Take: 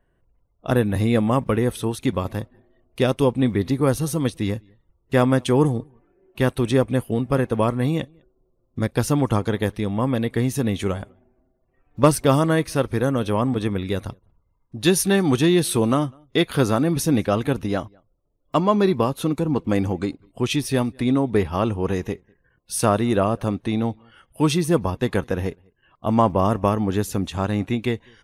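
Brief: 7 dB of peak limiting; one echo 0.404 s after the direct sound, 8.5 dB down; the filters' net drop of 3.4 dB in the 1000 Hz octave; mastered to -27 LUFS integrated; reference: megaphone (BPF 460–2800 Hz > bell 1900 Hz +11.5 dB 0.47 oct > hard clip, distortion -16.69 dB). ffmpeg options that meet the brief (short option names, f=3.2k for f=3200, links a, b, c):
-af "equalizer=f=1k:t=o:g=-5,alimiter=limit=-11.5dB:level=0:latency=1,highpass=460,lowpass=2.8k,equalizer=f=1.9k:t=o:w=0.47:g=11.5,aecho=1:1:404:0.376,asoftclip=type=hard:threshold=-18dB,volume=2dB"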